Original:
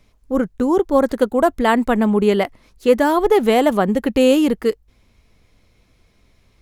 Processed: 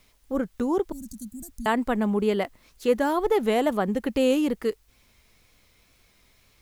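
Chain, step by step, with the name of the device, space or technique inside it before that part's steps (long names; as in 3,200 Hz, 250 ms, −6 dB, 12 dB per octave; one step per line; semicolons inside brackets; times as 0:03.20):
0:00.92–0:01.66: elliptic band-stop filter 200–6,100 Hz, stop band 40 dB
noise-reduction cassette on a plain deck (one half of a high-frequency compander encoder only; tape wow and flutter; white noise bed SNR 42 dB)
level −8 dB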